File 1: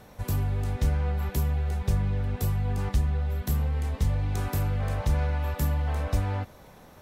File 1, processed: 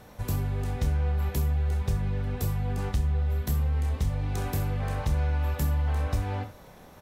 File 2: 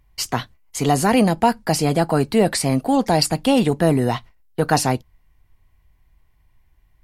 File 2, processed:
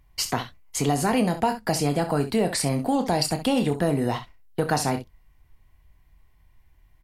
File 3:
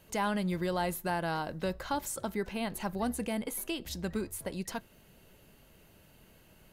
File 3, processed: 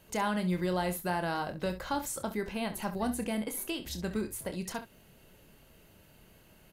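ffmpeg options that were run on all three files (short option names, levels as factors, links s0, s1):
-filter_complex "[0:a]asplit=2[s0][s1];[s1]aecho=0:1:28|66:0.335|0.224[s2];[s0][s2]amix=inputs=2:normalize=0,acompressor=threshold=0.0631:ratio=2"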